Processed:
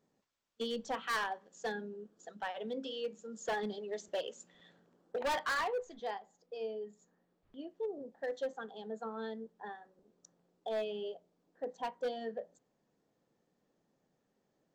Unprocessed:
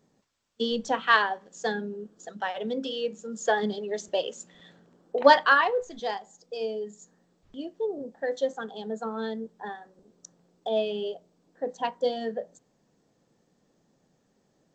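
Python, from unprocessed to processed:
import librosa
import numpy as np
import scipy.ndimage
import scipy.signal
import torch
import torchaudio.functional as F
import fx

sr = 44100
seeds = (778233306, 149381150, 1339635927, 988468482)

y = fx.bass_treble(x, sr, bass_db=-4, treble_db=fx.steps((0.0, -3.0), (5.93, -12.0), (7.69, -6.0)))
y = np.clip(10.0 ** (22.5 / 20.0) * y, -1.0, 1.0) / 10.0 ** (22.5 / 20.0)
y = F.gain(torch.from_numpy(y), -8.0).numpy()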